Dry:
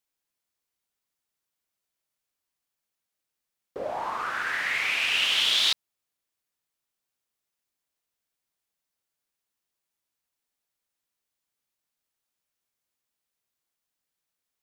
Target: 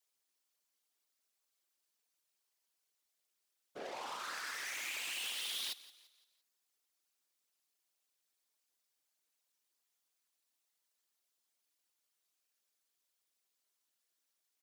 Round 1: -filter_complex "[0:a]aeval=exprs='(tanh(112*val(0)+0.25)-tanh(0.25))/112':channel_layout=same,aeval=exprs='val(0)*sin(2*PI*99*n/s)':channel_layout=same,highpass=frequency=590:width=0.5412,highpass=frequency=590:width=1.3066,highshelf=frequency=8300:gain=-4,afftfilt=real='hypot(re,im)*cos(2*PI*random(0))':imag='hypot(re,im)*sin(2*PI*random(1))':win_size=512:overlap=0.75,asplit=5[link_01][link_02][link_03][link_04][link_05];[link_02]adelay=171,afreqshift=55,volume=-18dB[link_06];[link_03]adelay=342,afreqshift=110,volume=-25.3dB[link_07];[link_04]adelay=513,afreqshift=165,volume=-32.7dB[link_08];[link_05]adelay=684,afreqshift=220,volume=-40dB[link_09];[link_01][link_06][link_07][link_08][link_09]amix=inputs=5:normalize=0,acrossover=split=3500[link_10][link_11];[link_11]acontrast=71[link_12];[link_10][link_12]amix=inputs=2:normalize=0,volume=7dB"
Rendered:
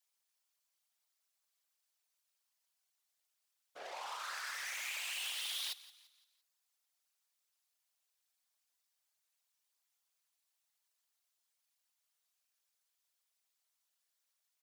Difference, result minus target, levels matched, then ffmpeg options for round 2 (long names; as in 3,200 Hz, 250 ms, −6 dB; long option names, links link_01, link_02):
250 Hz band −14.5 dB
-filter_complex "[0:a]aeval=exprs='(tanh(112*val(0)+0.25)-tanh(0.25))/112':channel_layout=same,aeval=exprs='val(0)*sin(2*PI*99*n/s)':channel_layout=same,highpass=frequency=250:width=0.5412,highpass=frequency=250:width=1.3066,highshelf=frequency=8300:gain=-4,afftfilt=real='hypot(re,im)*cos(2*PI*random(0))':imag='hypot(re,im)*sin(2*PI*random(1))':win_size=512:overlap=0.75,asplit=5[link_01][link_02][link_03][link_04][link_05];[link_02]adelay=171,afreqshift=55,volume=-18dB[link_06];[link_03]adelay=342,afreqshift=110,volume=-25.3dB[link_07];[link_04]adelay=513,afreqshift=165,volume=-32.7dB[link_08];[link_05]adelay=684,afreqshift=220,volume=-40dB[link_09];[link_01][link_06][link_07][link_08][link_09]amix=inputs=5:normalize=0,acrossover=split=3500[link_10][link_11];[link_11]acontrast=71[link_12];[link_10][link_12]amix=inputs=2:normalize=0,volume=7dB"